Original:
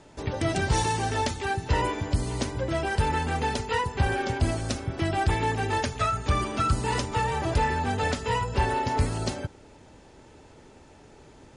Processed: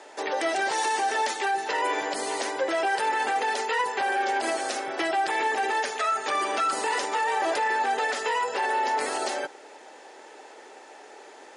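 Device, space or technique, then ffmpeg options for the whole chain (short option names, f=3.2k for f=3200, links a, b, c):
laptop speaker: -af "highpass=f=390:w=0.5412,highpass=f=390:w=1.3066,equalizer=f=780:t=o:w=0.22:g=6,equalizer=f=1.8k:t=o:w=0.39:g=5.5,alimiter=level_in=0.5dB:limit=-24dB:level=0:latency=1:release=46,volume=-0.5dB,volume=6.5dB"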